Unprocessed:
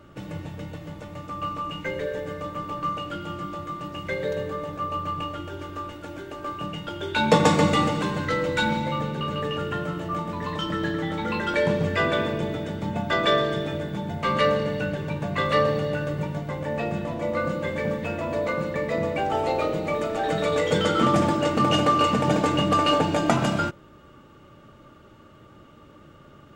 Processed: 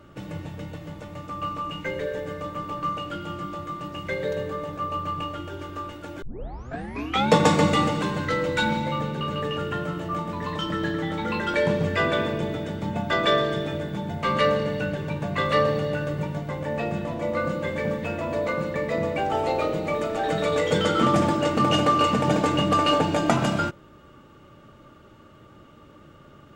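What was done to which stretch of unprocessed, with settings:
6.22 tape start 1.07 s

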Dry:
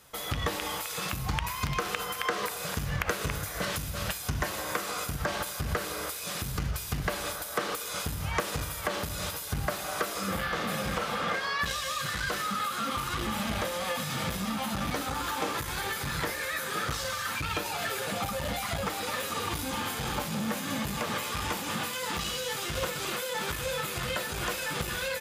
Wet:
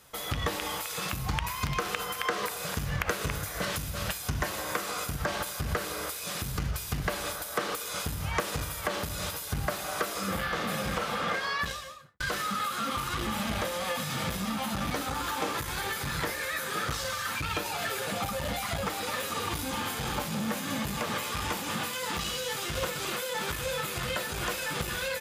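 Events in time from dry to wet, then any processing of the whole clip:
11.52–12.2 studio fade out

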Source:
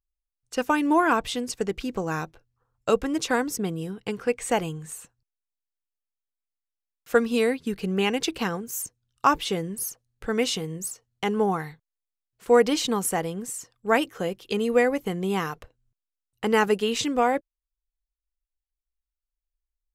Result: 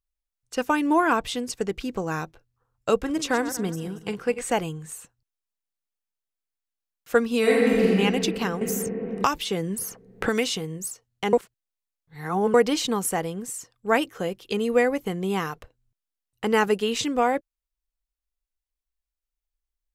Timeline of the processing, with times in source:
2.95–4.58 regenerating reverse delay 0.116 s, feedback 44%, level -12 dB
7.39–7.88 reverb throw, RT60 2.6 s, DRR -7 dB
8.61–10.5 three-band squash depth 100%
11.33–12.54 reverse

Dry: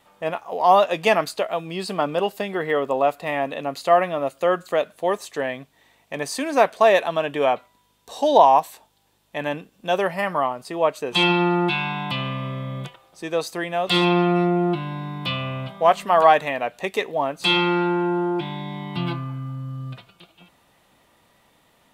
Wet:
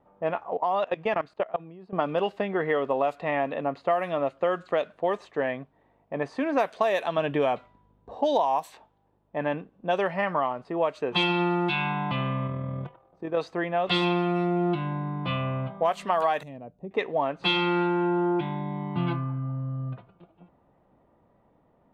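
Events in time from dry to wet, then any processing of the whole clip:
0.57–1.93 level quantiser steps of 22 dB
7.18–8.16 low shelf 250 Hz +9.5 dB
12.47–13.38 AM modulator 41 Hz, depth 30%
16.43–16.91 EQ curve 160 Hz 0 dB, 1700 Hz -30 dB, 8400 Hz -11 dB
19.43–19.89 bell 620 Hz +10.5 dB 0.31 oct
whole clip: low-pass opened by the level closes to 730 Hz, open at -12.5 dBFS; compressor 6:1, threshold -21 dBFS

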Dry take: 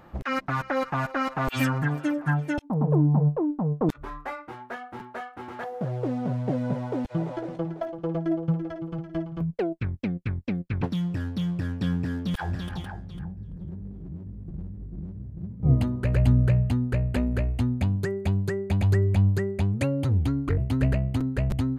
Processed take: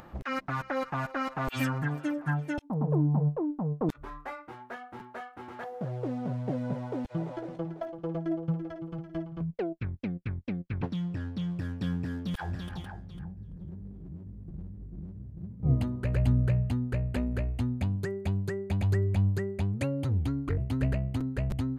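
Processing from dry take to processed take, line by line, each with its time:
9.26–11.51 air absorption 57 m
whole clip: upward compressor, threshold -39 dBFS; gain -5 dB

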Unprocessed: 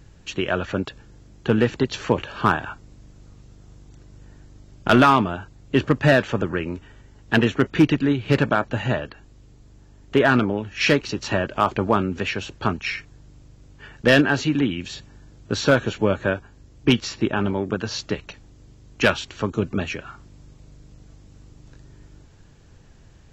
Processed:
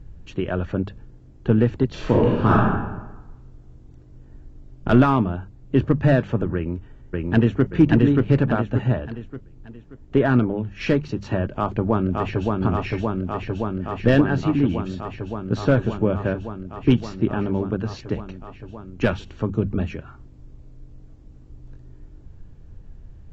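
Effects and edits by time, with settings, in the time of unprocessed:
1.89–2.69 reverb throw, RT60 1.1 s, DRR -5.5 dB
6.55–7.7 echo throw 0.58 s, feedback 40%, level -0.5 dB
11.47–12.61 echo throw 0.57 s, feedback 85%, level -2.5 dB
whole clip: tilt -3.5 dB/oct; notches 50/100/150/200 Hz; gain -5.5 dB

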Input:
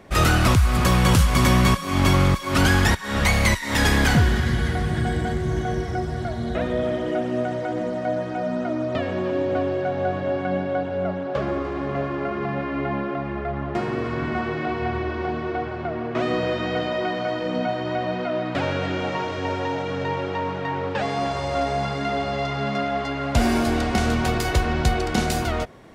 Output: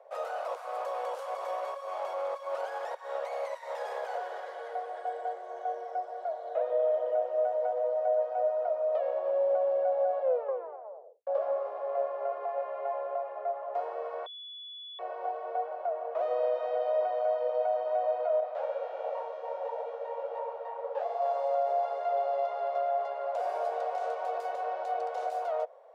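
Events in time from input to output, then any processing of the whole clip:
10.22 tape stop 1.05 s
14.26–14.99 bleep 3420 Hz -18 dBFS
18.4–21.22 detuned doubles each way 52 cents
whole clip: steep high-pass 490 Hz 72 dB/oct; limiter -18.5 dBFS; EQ curve 650 Hz 0 dB, 1900 Hz -21 dB, 14000 Hz -28 dB

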